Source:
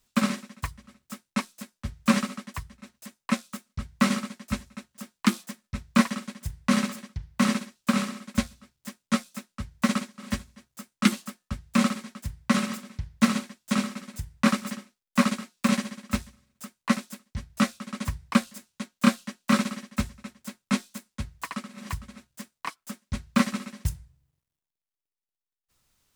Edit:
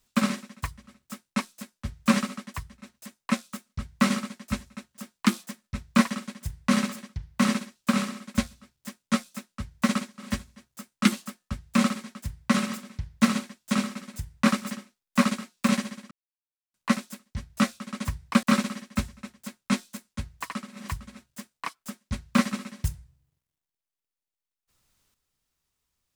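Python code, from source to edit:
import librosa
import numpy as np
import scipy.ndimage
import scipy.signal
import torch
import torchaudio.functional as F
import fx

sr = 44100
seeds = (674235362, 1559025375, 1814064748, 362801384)

y = fx.edit(x, sr, fx.silence(start_s=16.11, length_s=0.63),
    fx.cut(start_s=18.43, length_s=1.01), tone=tone)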